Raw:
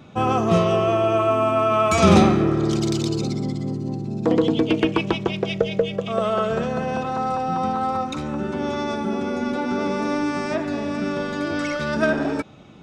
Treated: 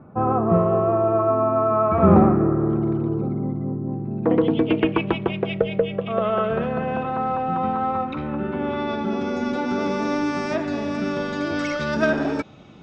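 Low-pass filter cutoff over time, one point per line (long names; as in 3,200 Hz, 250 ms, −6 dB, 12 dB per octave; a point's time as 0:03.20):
low-pass filter 24 dB per octave
0:03.81 1,400 Hz
0:04.53 2,900 Hz
0:08.66 2,900 Hz
0:09.37 6,900 Hz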